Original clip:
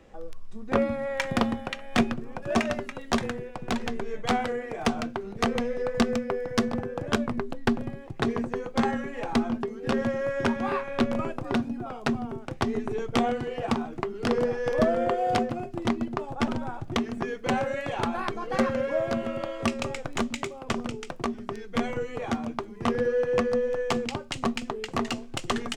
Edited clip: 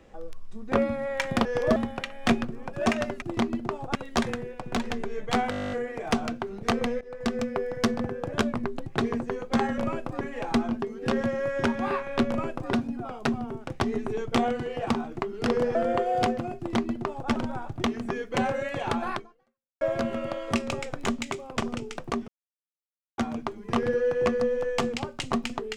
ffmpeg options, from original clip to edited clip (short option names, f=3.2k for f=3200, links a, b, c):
-filter_complex "[0:a]asplit=24[a][b][c][d][e][f][g][h][i][j][k][l][m][n][o][p][q][r][s][t][u][v][w][x];[a]atrim=end=1.452[y];[b]atrim=start=14.558:end=14.872[z];[c]atrim=start=1.448:end=2.912[aa];[d]atrim=start=15.698:end=16.432[ab];[e]atrim=start=2.908:end=4.482[ac];[f]atrim=start=4.458:end=4.482[ad];[g]atrim=start=4.458:end=4.482[ae];[h]atrim=start=4.458:end=4.482[af];[i]atrim=start=4.458:end=4.482[ag];[j]atrim=start=4.458:end=4.482[ah];[k]atrim=start=4.458:end=4.482[ai];[l]atrim=start=4.458:end=4.482[aj];[m]atrim=start=4.458:end=4.482[ak];[n]atrim=start=4.458:end=4.482[al];[o]atrim=start=4.458:end=4.482[am];[p]atrim=start=4.458:end=5.75,asetpts=PTS-STARTPTS,afade=t=out:st=1.288:d=0.004:c=hsin:silence=0.0841395[an];[q]atrim=start=5.75:end=7.602,asetpts=PTS-STARTPTS,afade=t=in:d=0.5:silence=0.0841395[ao];[r]atrim=start=8.098:end=9.022[ap];[s]atrim=start=11.098:end=11.532[aq];[t]atrim=start=9.018:end=14.562[ar];[u]atrim=start=14.868:end=18.93,asetpts=PTS-STARTPTS,afade=t=out:st=3.402:d=0.66:c=exp[as];[v]atrim=start=18.93:end=21.4,asetpts=PTS-STARTPTS,afade=t=in:d=0.004:c=hsin,afade=t=out:st=2.466:d=0.004:c=hsin[at];[w]atrim=start=21.4:end=22.3,asetpts=PTS-STARTPTS,volume=0[au];[x]atrim=start=22.3,asetpts=PTS-STARTPTS,afade=t=in:d=0.004:c=hsin[av];[y][z]acrossfade=d=0.004:c1=hsin:c2=hsin[aw];[aw][aa]acrossfade=d=0.004:c1=hsin:c2=hsin[ax];[ax][ab]acrossfade=d=0.004:c1=hsin:c2=hsin[ay];[ay][ac]acrossfade=d=0.004:c1=hsin:c2=hsin[az];[az][ad]acrossfade=d=0.004:c1=hsin:c2=hsin[ba];[ba][ae]acrossfade=d=0.004:c1=hsin:c2=hsin[bb];[bb][af]acrossfade=d=0.004:c1=hsin:c2=hsin[bc];[bc][ag]acrossfade=d=0.004:c1=hsin:c2=hsin[bd];[bd][ah]acrossfade=d=0.004:c1=hsin:c2=hsin[be];[be][ai]acrossfade=d=0.004:c1=hsin:c2=hsin[bf];[bf][aj]acrossfade=d=0.004:c1=hsin:c2=hsin[bg];[bg][ak]acrossfade=d=0.004:c1=hsin:c2=hsin[bh];[bh][al]acrossfade=d=0.004:c1=hsin:c2=hsin[bi];[bi][am]acrossfade=d=0.004:c1=hsin:c2=hsin[bj];[an][ao]concat=n=2:v=0:a=1[bk];[bj][bk]acrossfade=d=0.004:c1=hsin:c2=hsin[bl];[bl][ap]acrossfade=d=0.004:c1=hsin:c2=hsin[bm];[bm][aq]acrossfade=d=0.004:c1=hsin:c2=hsin[bn];[bn][ar]acrossfade=d=0.004:c1=hsin:c2=hsin[bo];[as][at][au][av]concat=n=4:v=0:a=1[bp];[bo][bp]acrossfade=d=0.004:c1=hsin:c2=hsin"